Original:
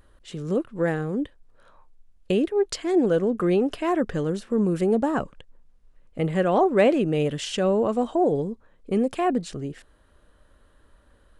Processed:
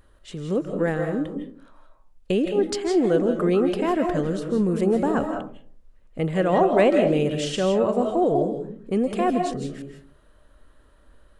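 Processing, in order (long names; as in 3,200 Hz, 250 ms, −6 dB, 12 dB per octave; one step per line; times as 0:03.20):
comb and all-pass reverb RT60 0.47 s, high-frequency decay 0.35×, pre-delay 120 ms, DRR 4.5 dB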